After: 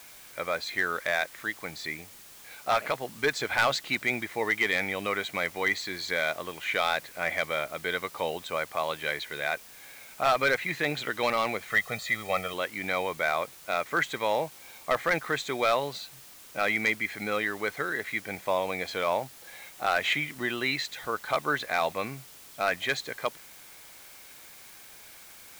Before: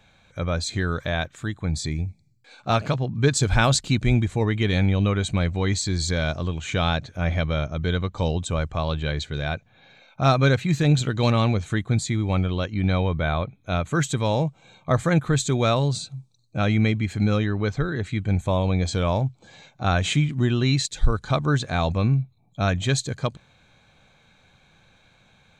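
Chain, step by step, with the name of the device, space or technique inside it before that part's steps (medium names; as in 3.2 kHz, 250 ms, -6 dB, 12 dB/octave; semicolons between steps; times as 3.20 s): drive-through speaker (band-pass 520–3300 Hz; peaking EQ 2 kHz +11 dB 0.32 oct; hard clipper -17 dBFS, distortion -14 dB; white noise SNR 19 dB); 11.70–12.54 s: comb 1.6 ms, depth 74%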